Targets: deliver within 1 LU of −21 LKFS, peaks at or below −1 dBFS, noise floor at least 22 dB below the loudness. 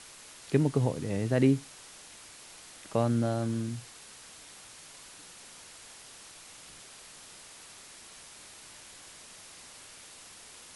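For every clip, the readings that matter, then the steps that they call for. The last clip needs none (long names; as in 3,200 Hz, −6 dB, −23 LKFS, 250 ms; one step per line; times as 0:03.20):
background noise floor −51 dBFS; target noise floor −52 dBFS; integrated loudness −29.5 LKFS; sample peak −11.0 dBFS; target loudness −21.0 LKFS
→ broadband denoise 6 dB, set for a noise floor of −51 dBFS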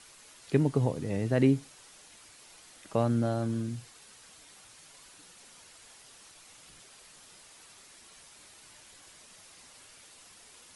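background noise floor −55 dBFS; integrated loudness −29.5 LKFS; sample peak −11.0 dBFS; target loudness −21.0 LKFS
→ level +8.5 dB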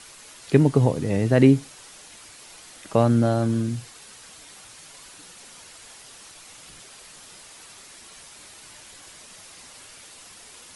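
integrated loudness −21.0 LKFS; sample peak −2.5 dBFS; background noise floor −47 dBFS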